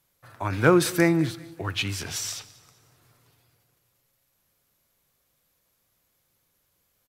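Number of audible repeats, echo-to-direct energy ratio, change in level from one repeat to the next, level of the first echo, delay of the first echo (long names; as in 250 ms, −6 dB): 2, −21.5 dB, −6.5 dB, −22.5 dB, 193 ms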